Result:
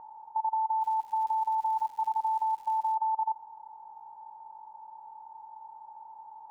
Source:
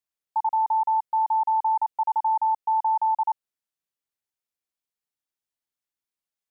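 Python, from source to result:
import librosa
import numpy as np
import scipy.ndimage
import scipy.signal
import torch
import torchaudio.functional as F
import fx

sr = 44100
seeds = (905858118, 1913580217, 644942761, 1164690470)

y = fx.bin_compress(x, sr, power=0.2)
y = scipy.signal.sosfilt(scipy.signal.butter(2, 1100.0, 'lowpass', fs=sr, output='sos'), y)
y = fx.dmg_crackle(y, sr, seeds[0], per_s=280.0, level_db=-41.0, at=(0.8, 2.95), fade=0.02)
y = y * 10.0 ** (-5.0 / 20.0)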